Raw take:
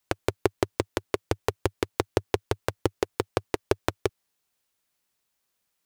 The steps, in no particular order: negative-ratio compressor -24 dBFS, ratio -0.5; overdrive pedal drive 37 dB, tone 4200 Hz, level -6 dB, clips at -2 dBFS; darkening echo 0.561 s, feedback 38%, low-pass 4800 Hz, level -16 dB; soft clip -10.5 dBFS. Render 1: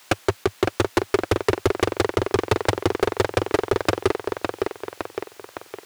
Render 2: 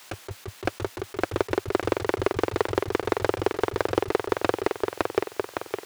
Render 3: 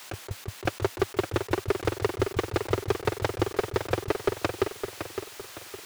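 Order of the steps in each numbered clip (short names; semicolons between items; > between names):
negative-ratio compressor > darkening echo > overdrive pedal > soft clip; darkening echo > overdrive pedal > soft clip > negative-ratio compressor; overdrive pedal > darkening echo > negative-ratio compressor > soft clip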